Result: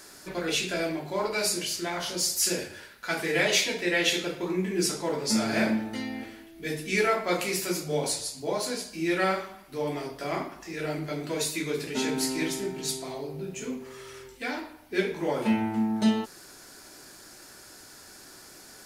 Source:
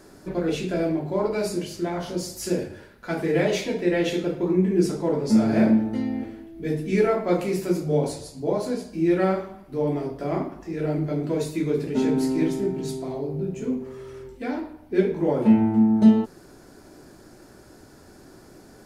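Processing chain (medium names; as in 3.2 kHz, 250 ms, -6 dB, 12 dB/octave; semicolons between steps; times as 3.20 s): tilt shelf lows -10 dB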